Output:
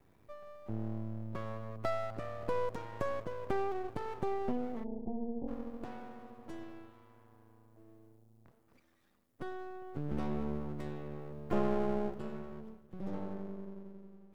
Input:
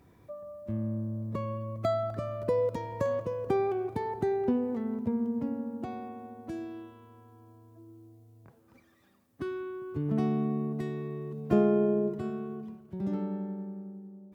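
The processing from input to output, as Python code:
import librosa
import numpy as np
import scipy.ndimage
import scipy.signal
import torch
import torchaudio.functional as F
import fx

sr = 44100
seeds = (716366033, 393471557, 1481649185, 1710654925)

y = np.maximum(x, 0.0)
y = fx.ellip_lowpass(y, sr, hz=850.0, order=4, stop_db=40, at=(4.83, 5.47), fade=0.02)
y = F.gain(torch.from_numpy(y), -3.0).numpy()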